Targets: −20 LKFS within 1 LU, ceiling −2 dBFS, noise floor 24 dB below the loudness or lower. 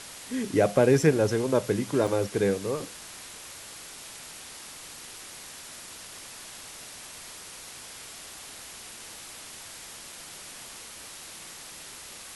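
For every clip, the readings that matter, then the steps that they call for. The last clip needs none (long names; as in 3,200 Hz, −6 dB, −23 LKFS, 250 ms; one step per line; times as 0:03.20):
number of dropouts 1; longest dropout 4.2 ms; background noise floor −44 dBFS; target noise floor −55 dBFS; integrated loudness −31.0 LKFS; sample peak −8.5 dBFS; target loudness −20.0 LKFS
→ repair the gap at 0:02.07, 4.2 ms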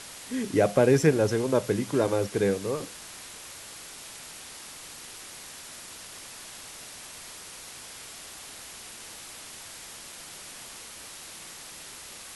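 number of dropouts 0; background noise floor −44 dBFS; target noise floor −55 dBFS
→ broadband denoise 11 dB, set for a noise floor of −44 dBFS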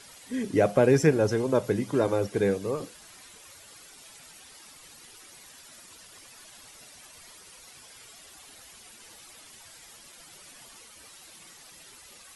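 background noise floor −51 dBFS; integrated loudness −25.0 LKFS; sample peak −8.5 dBFS; target loudness −20.0 LKFS
→ level +5 dB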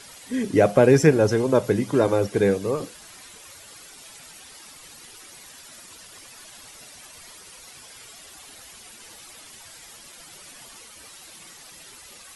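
integrated loudness −20.0 LKFS; sample peak −3.5 dBFS; background noise floor −46 dBFS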